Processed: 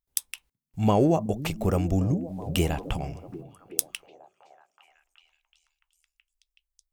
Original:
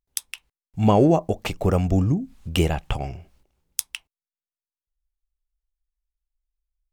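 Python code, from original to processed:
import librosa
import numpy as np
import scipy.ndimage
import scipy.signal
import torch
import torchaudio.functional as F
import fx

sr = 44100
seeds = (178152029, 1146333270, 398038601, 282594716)

p1 = fx.high_shelf(x, sr, hz=7900.0, db=8.5)
p2 = p1 + fx.echo_stepped(p1, sr, ms=375, hz=170.0, octaves=0.7, feedback_pct=70, wet_db=-8, dry=0)
y = F.gain(torch.from_numpy(p2), -4.5).numpy()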